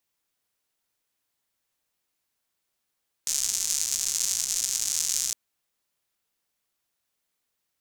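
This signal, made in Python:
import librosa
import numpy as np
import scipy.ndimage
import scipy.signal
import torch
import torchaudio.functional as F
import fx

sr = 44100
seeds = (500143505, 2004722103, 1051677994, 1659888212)

y = fx.rain(sr, seeds[0], length_s=2.06, drops_per_s=200.0, hz=6600.0, bed_db=-25.0)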